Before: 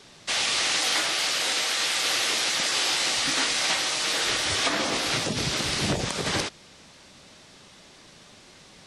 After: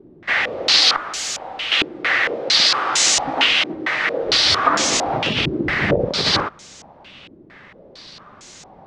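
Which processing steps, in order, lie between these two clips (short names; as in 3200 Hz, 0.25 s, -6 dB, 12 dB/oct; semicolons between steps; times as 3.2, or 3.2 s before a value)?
0.96–1.72 tube stage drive 33 dB, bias 0.55; stepped low-pass 4.4 Hz 340–6900 Hz; gain +5 dB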